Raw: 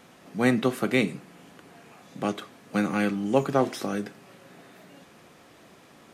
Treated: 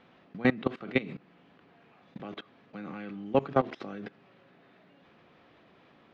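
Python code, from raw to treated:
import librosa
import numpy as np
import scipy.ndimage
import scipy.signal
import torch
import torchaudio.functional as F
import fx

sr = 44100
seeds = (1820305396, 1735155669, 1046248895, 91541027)

y = scipy.signal.sosfilt(scipy.signal.butter(4, 3800.0, 'lowpass', fs=sr, output='sos'), x)
y = fx.level_steps(y, sr, step_db=20)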